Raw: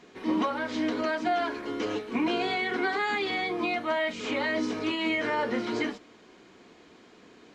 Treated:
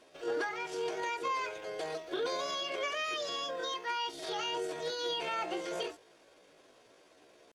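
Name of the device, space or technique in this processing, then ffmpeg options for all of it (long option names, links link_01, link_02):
chipmunk voice: -filter_complex "[0:a]asetrate=66075,aresample=44100,atempo=0.66742,asettb=1/sr,asplit=3[link_01][link_02][link_03];[link_01]atrim=end=3.614[link_04];[link_02]atrim=start=3.61:end=4.05,asetpts=PTS-STARTPTS,afade=type=in:duration=0.004:curve=qsin,afade=type=out:start_time=0.436:duration=0.004:curve=qsin,lowshelf=frequency=220:gain=-9.5[link_05];[link_03]atrim=start=4.046[link_06];[link_04][link_05]acrossfade=duration=0.004:curve1=hsin:curve2=qsin[link_07];[link_07][link_06]acrossfade=duration=0.004:curve1=qsin:curve2=hsin,volume=-7dB"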